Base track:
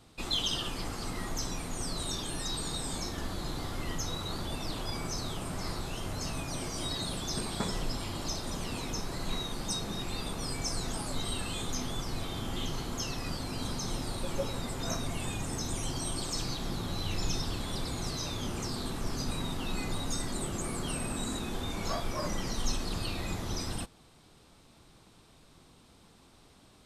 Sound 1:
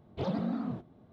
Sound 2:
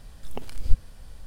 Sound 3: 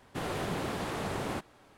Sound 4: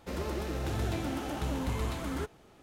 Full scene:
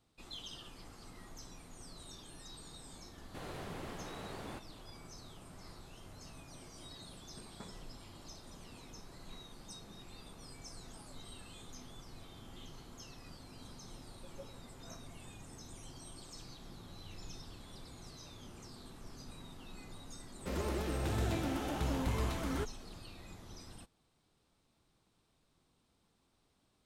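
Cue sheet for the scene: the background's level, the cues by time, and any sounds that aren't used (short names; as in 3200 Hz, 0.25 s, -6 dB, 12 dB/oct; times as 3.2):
base track -16.5 dB
3.19 add 3 -11.5 dB
20.39 add 4 -2 dB
not used: 1, 2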